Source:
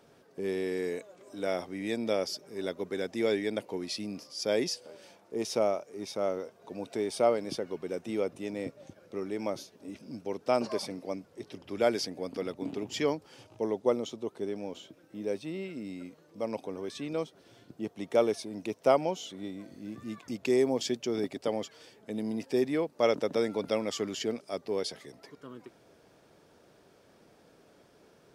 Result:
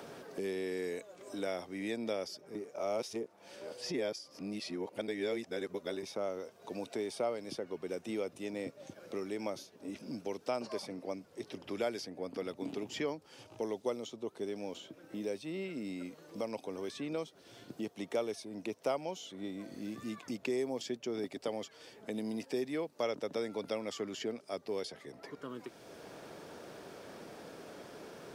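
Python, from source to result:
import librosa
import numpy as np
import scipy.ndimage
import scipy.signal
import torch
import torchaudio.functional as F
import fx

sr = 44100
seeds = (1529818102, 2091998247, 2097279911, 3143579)

y = fx.edit(x, sr, fx.reverse_span(start_s=2.55, length_s=3.48), tone=tone)
y = fx.low_shelf(y, sr, hz=240.0, db=-3.5)
y = fx.band_squash(y, sr, depth_pct=70)
y = F.gain(torch.from_numpy(y), -5.0).numpy()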